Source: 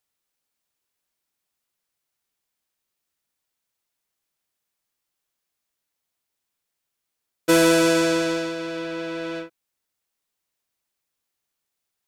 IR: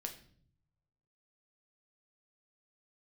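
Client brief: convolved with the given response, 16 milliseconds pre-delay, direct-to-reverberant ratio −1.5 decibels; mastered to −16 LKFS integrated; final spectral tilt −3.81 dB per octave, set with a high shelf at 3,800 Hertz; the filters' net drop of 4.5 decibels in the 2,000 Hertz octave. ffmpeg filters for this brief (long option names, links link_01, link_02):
-filter_complex "[0:a]equalizer=frequency=2000:width_type=o:gain=-5.5,highshelf=frequency=3800:gain=-4.5,asplit=2[link_01][link_02];[1:a]atrim=start_sample=2205,adelay=16[link_03];[link_02][link_03]afir=irnorm=-1:irlink=0,volume=3.5dB[link_04];[link_01][link_04]amix=inputs=2:normalize=0,volume=3.5dB"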